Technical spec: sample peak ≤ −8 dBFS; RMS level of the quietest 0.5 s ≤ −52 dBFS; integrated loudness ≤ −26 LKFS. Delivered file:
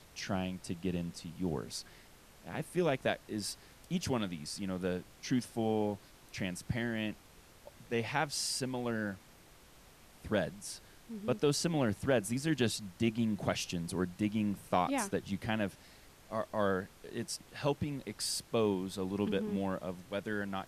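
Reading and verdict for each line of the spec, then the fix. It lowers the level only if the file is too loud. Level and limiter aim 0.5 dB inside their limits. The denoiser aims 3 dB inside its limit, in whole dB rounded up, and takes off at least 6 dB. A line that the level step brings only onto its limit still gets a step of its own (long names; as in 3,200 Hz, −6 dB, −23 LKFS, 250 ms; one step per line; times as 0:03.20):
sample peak −15.5 dBFS: in spec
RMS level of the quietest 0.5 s −59 dBFS: in spec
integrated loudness −35.5 LKFS: in spec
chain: no processing needed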